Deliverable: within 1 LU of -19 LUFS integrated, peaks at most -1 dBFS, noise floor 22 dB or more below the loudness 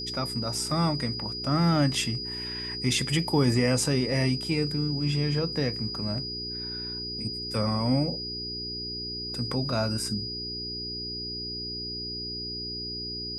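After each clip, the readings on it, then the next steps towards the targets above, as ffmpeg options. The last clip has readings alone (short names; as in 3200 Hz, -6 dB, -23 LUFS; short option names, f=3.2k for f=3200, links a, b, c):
hum 60 Hz; harmonics up to 420 Hz; hum level -39 dBFS; steady tone 4900 Hz; tone level -33 dBFS; loudness -28.0 LUFS; peak -11.0 dBFS; loudness target -19.0 LUFS
-> -af "bandreject=f=60:t=h:w=4,bandreject=f=120:t=h:w=4,bandreject=f=180:t=h:w=4,bandreject=f=240:t=h:w=4,bandreject=f=300:t=h:w=4,bandreject=f=360:t=h:w=4,bandreject=f=420:t=h:w=4"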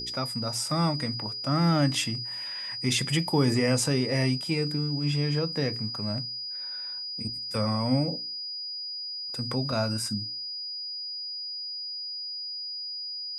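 hum none; steady tone 4900 Hz; tone level -33 dBFS
-> -af "bandreject=f=4.9k:w=30"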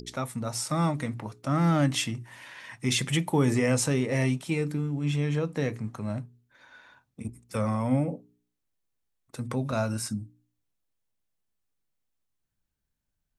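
steady tone none; loudness -28.0 LUFS; peak -11.5 dBFS; loudness target -19.0 LUFS
-> -af "volume=9dB"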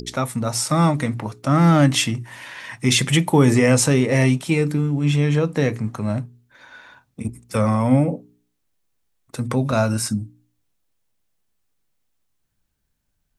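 loudness -19.5 LUFS; peak -2.5 dBFS; noise floor -72 dBFS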